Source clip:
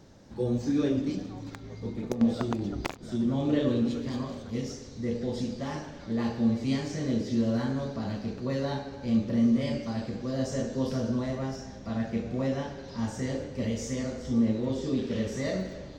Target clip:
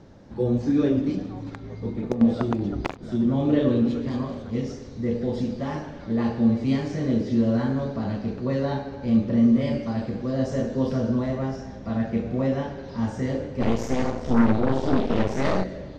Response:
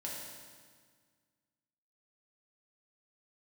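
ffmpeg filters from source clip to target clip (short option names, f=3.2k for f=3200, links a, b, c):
-filter_complex "[0:a]asplit=3[a][b][c];[a]afade=t=out:st=13.6:d=0.02[d];[b]aeval=exprs='0.168*(cos(1*acos(clip(val(0)/0.168,-1,1)))-cos(1*PI/2))+0.0376*(cos(8*acos(clip(val(0)/0.168,-1,1)))-cos(8*PI/2))':c=same,afade=t=in:st=13.6:d=0.02,afade=t=out:st=15.63:d=0.02[e];[c]afade=t=in:st=15.63:d=0.02[f];[d][e][f]amix=inputs=3:normalize=0,aemphasis=mode=reproduction:type=75fm,volume=4.5dB"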